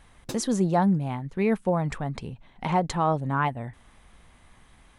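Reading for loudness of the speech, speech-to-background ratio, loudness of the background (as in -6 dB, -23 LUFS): -26.5 LUFS, 15.5 dB, -42.0 LUFS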